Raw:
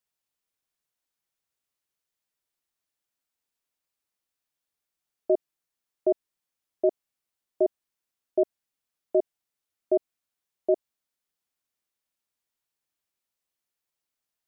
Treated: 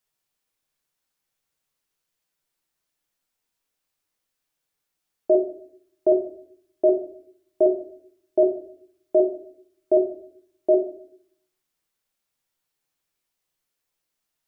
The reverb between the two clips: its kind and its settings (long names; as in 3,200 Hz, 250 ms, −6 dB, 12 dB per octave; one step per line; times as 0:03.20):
rectangular room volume 77 cubic metres, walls mixed, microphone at 0.51 metres
level +4 dB